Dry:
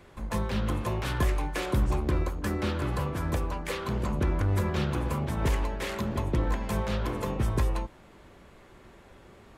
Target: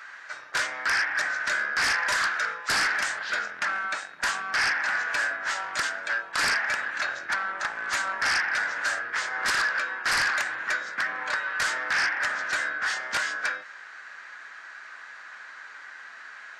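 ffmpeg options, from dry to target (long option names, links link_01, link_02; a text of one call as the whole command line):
ffmpeg -i in.wav -af "highpass=frequency=2800:width_type=q:width=6.2,aeval=exprs='0.158*sin(PI/2*4.47*val(0)/0.158)':channel_layout=same,asetrate=25442,aresample=44100,volume=-4.5dB" out.wav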